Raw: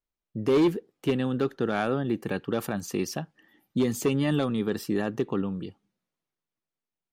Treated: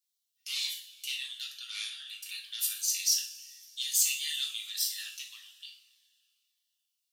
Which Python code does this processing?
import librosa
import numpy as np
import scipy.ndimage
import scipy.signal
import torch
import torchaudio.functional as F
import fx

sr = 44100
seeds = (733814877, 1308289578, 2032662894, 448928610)

y = scipy.signal.sosfilt(scipy.signal.cheby2(4, 80, 550.0, 'highpass', fs=sr, output='sos'), x)
y = fx.rev_double_slope(y, sr, seeds[0], early_s=0.43, late_s=2.5, knee_db=-20, drr_db=-2.0)
y = fx.notch_cascade(y, sr, direction='falling', hz=1.7)
y = F.gain(torch.from_numpy(y), 9.0).numpy()